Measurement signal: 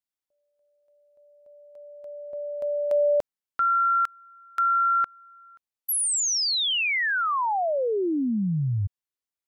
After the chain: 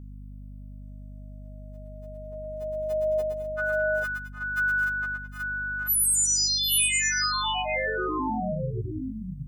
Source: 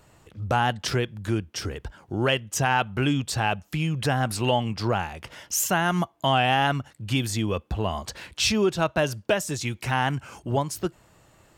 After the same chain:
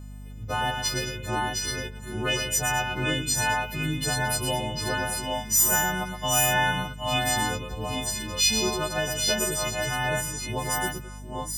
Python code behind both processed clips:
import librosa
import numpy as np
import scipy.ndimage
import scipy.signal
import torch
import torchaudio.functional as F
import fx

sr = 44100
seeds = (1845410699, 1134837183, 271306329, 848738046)

y = fx.freq_snap(x, sr, grid_st=3)
y = fx.echo_multitap(y, sr, ms=(116, 214, 216, 759, 783, 825), db=(-6.0, -15.5, -19.0, -13.0, -7.5, -5.0))
y = fx.add_hum(y, sr, base_hz=50, snr_db=13)
y = y * 10.0 ** (-7.0 / 20.0)